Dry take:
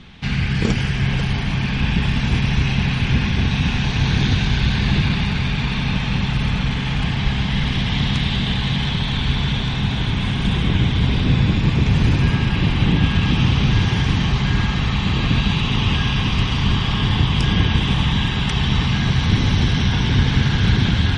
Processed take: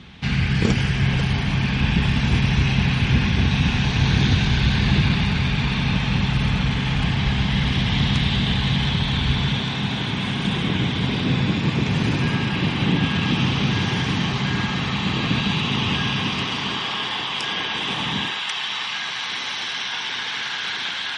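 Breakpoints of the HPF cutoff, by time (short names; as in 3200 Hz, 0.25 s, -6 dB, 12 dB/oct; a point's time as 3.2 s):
9.27 s 49 Hz
9.69 s 160 Hz
16.1 s 160 Hz
17.12 s 550 Hz
17.69 s 550 Hz
18.19 s 230 Hz
18.4 s 940 Hz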